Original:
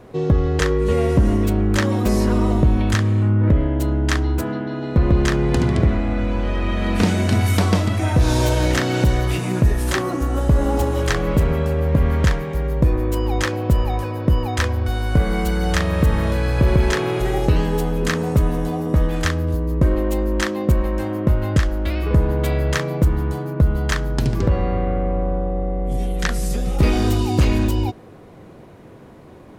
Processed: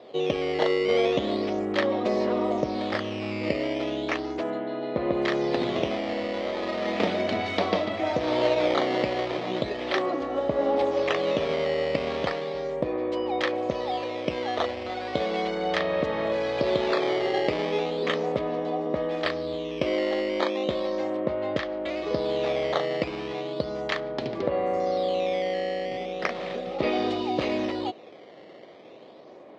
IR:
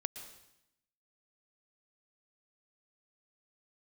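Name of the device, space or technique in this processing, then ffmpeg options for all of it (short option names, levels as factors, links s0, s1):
circuit-bent sampling toy: -af "acrusher=samples=10:mix=1:aa=0.000001:lfo=1:lforange=16:lforate=0.36,highpass=420,equalizer=f=600:t=q:w=4:g=5,equalizer=f=980:t=q:w=4:g=-5,equalizer=f=1500:t=q:w=4:g=-10,equalizer=f=2700:t=q:w=4:g=-4,lowpass=f=4000:w=0.5412,lowpass=f=4000:w=1.3066"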